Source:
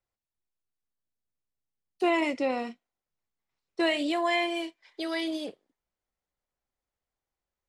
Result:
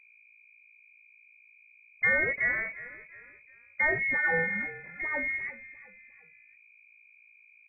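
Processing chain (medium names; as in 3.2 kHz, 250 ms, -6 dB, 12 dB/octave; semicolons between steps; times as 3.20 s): hum 60 Hz, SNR 26 dB; frequency inversion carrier 2.6 kHz; on a send: frequency-shifting echo 352 ms, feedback 40%, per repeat -37 Hz, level -16.5 dB; on the sum: pitch shift -1 st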